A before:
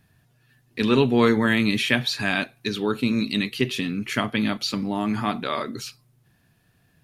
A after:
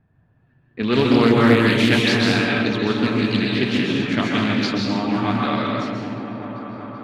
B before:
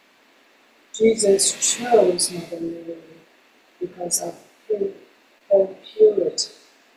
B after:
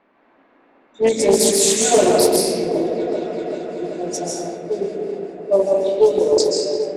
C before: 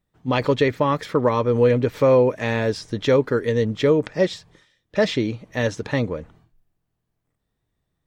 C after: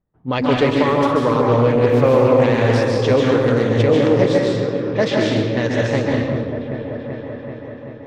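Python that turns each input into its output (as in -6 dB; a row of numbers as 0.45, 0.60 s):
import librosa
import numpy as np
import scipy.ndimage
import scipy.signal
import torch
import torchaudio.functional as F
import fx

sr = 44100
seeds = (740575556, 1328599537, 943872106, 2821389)

y = fx.echo_opening(x, sr, ms=385, hz=400, octaves=1, feedback_pct=70, wet_db=-6)
y = fx.rev_plate(y, sr, seeds[0], rt60_s=1.1, hf_ratio=0.95, predelay_ms=120, drr_db=-2.0)
y = fx.env_lowpass(y, sr, base_hz=1200.0, full_db=-11.5)
y = fx.doppler_dist(y, sr, depth_ms=0.26)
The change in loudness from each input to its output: +4.5, +2.0, +4.5 LU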